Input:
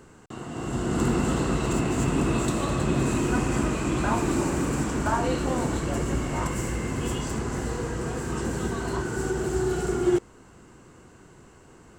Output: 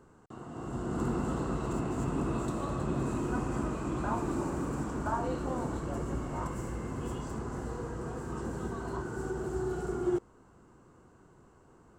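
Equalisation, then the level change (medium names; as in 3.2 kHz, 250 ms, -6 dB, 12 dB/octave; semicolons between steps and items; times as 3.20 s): resonant high shelf 1.6 kHz -6.5 dB, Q 1.5; -8.0 dB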